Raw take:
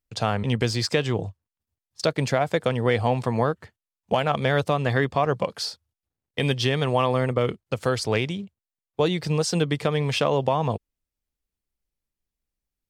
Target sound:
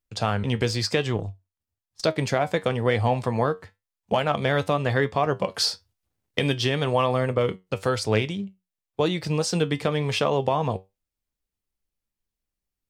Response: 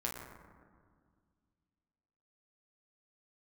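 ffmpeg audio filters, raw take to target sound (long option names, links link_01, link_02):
-filter_complex "[0:a]asettb=1/sr,asplit=3[link_01][link_02][link_03];[link_01]atrim=end=5.544[link_04];[link_02]atrim=start=5.54:end=6.39,asetpts=PTS-STARTPTS,afade=type=in:duration=0.004:curve=qsin,afade=type=out:start_time=0.846:duration=0.004:curve=qsin,acontrast=78[link_05];[link_03]atrim=start=6.386[link_06];[link_04][link_05]acrossfade=duration=0.004:curve1=hsin:curve2=qsin[link_07];[link_07][link_06]acrossfade=duration=0.004:curve1=qsin:curve2=hsin,flanger=delay=9.2:depth=1.7:regen=70:speed=0.98:shape=triangular,asettb=1/sr,asplit=3[link_08][link_09][link_10];[link_08]atrim=end=1.164[link_11];[link_09]atrim=start=1.16:end=2.03,asetpts=PTS-STARTPTS,afade=type=in:duration=0.004:curve=qsin,afade=type=out:start_time=0.866:duration=0.004:curve=qsin,aeval=exprs='0.158*(cos(1*acos(clip(val(0)/0.158,-1,1)))-cos(1*PI/2))+0.0141*(cos(3*acos(clip(val(0)/0.158,-1,1)))-cos(3*PI/2))+0.00562*(cos(6*acos(clip(val(0)/0.158,-1,1)))-cos(6*PI/2))':channel_layout=same[link_12];[link_10]atrim=start=2.026[link_13];[link_11][link_12]acrossfade=duration=0.004:curve1=hsin:curve2=qsin[link_14];[link_14][link_13]acrossfade=duration=0.004:curve1=qsin:curve2=hsin,volume=4dB"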